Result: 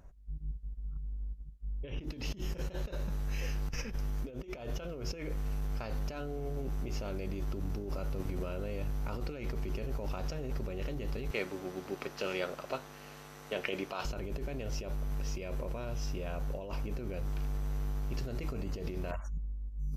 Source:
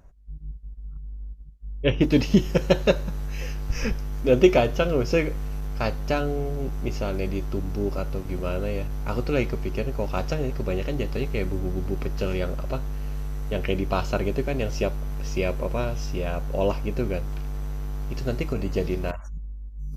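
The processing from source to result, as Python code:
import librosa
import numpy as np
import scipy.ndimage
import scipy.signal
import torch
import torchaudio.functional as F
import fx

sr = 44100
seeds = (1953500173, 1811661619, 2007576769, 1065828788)

y = fx.weighting(x, sr, curve='A', at=(11.31, 14.05))
y = fx.over_compress(y, sr, threshold_db=-30.0, ratio=-1.0)
y = F.gain(torch.from_numpy(y), -6.5).numpy()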